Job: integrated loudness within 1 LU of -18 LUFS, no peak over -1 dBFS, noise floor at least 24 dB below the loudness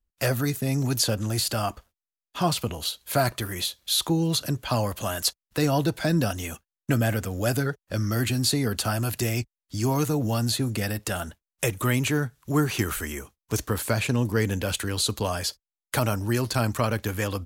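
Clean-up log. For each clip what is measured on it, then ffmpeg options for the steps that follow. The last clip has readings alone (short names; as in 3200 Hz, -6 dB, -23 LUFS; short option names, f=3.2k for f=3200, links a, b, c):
loudness -26.0 LUFS; peak -10.5 dBFS; loudness target -18.0 LUFS
-> -af "volume=8dB"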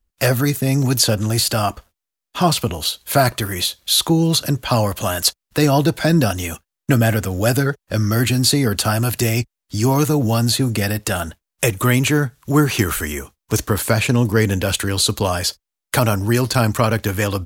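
loudness -18.0 LUFS; peak -2.5 dBFS; noise floor -84 dBFS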